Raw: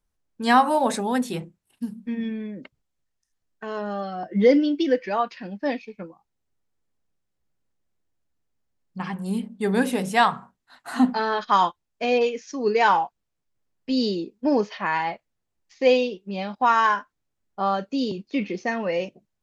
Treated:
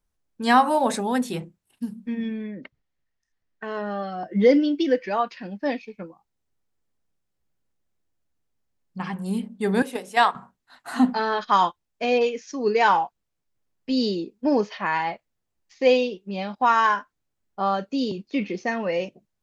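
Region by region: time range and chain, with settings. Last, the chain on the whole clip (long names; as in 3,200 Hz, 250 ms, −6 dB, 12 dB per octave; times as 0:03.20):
0:02.44–0:04.10: low-pass filter 4,900 Hz + parametric band 1,900 Hz +7 dB 0.35 octaves
0:09.82–0:10.35: high-pass filter 270 Hz 24 dB per octave + noise gate −25 dBFS, range −7 dB
whole clip: no processing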